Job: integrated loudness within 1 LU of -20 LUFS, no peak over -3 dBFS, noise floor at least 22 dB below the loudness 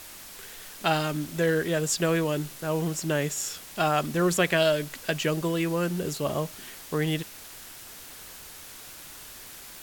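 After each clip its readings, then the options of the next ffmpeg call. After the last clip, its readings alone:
noise floor -45 dBFS; noise floor target -49 dBFS; loudness -27.0 LUFS; peak -10.0 dBFS; loudness target -20.0 LUFS
-> -af "afftdn=nr=6:nf=-45"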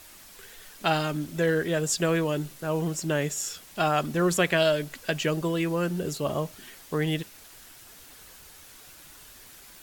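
noise floor -50 dBFS; loudness -27.0 LUFS; peak -10.5 dBFS; loudness target -20.0 LUFS
-> -af "volume=7dB"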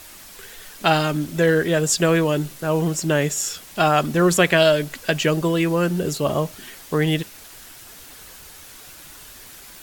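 loudness -20.0 LUFS; peak -3.5 dBFS; noise floor -43 dBFS

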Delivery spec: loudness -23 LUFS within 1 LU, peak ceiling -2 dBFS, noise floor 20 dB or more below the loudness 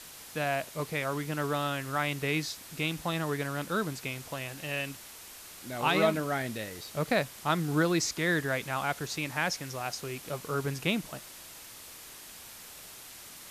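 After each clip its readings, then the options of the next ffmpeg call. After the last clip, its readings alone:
noise floor -48 dBFS; noise floor target -52 dBFS; loudness -31.5 LUFS; peak -13.5 dBFS; loudness target -23.0 LUFS
-> -af "afftdn=nr=6:nf=-48"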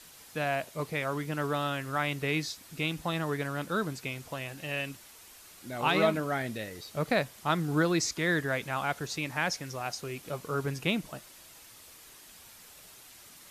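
noise floor -53 dBFS; loudness -31.5 LUFS; peak -13.5 dBFS; loudness target -23.0 LUFS
-> -af "volume=8.5dB"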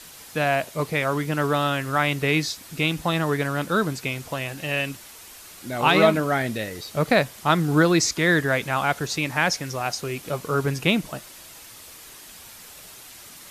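loudness -23.0 LUFS; peak -5.0 dBFS; noise floor -44 dBFS

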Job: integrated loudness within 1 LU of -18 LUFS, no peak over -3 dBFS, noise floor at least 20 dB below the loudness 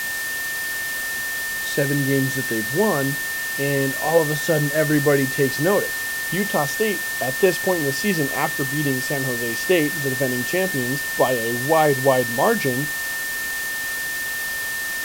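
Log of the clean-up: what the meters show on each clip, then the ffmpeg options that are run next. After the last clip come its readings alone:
steady tone 1800 Hz; tone level -25 dBFS; noise floor -27 dBFS; noise floor target -41 dBFS; loudness -21.0 LUFS; peak -4.5 dBFS; loudness target -18.0 LUFS
-> -af "bandreject=f=1.8k:w=30"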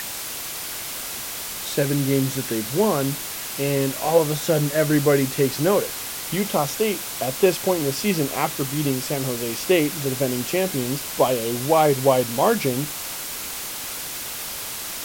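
steady tone none; noise floor -32 dBFS; noise floor target -43 dBFS
-> -af "afftdn=nr=11:nf=-32"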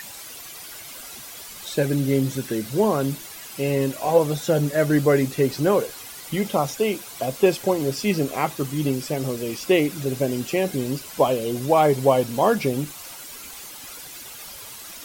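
noise floor -39 dBFS; noise floor target -43 dBFS
-> -af "afftdn=nr=6:nf=-39"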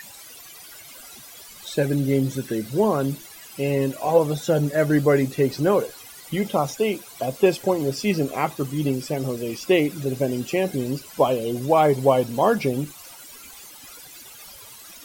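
noise floor -44 dBFS; loudness -22.5 LUFS; peak -4.5 dBFS; loudness target -18.0 LUFS
-> -af "volume=4.5dB,alimiter=limit=-3dB:level=0:latency=1"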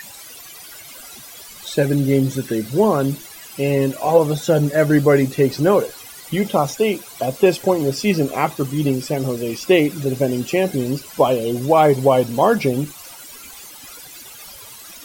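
loudness -18.5 LUFS; peak -3.0 dBFS; noise floor -39 dBFS

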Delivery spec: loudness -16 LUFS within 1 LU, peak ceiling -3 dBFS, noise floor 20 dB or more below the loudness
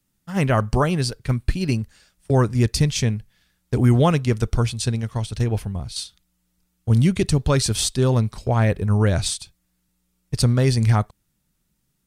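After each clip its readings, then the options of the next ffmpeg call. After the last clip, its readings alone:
loudness -21.0 LUFS; peak -5.5 dBFS; loudness target -16.0 LUFS
-> -af "volume=5dB,alimiter=limit=-3dB:level=0:latency=1"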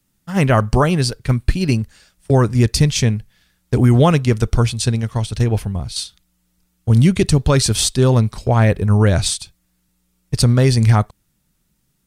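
loudness -16.5 LUFS; peak -3.0 dBFS; noise floor -66 dBFS

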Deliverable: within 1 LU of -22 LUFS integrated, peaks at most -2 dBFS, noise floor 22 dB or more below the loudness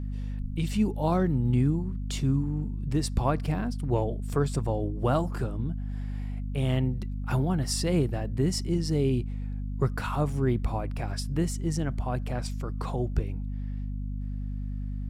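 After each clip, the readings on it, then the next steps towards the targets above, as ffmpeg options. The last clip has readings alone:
hum 50 Hz; harmonics up to 250 Hz; hum level -30 dBFS; loudness -29.5 LUFS; peak -12.0 dBFS; loudness target -22.0 LUFS
-> -af "bandreject=f=50:t=h:w=6,bandreject=f=100:t=h:w=6,bandreject=f=150:t=h:w=6,bandreject=f=200:t=h:w=6,bandreject=f=250:t=h:w=6"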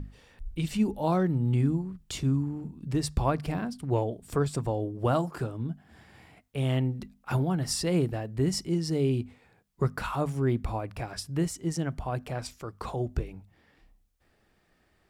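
hum none; loudness -30.0 LUFS; peak -13.0 dBFS; loudness target -22.0 LUFS
-> -af "volume=8dB"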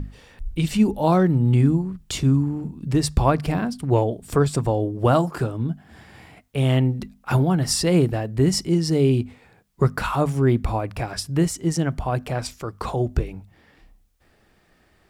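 loudness -22.0 LUFS; peak -5.0 dBFS; noise floor -60 dBFS

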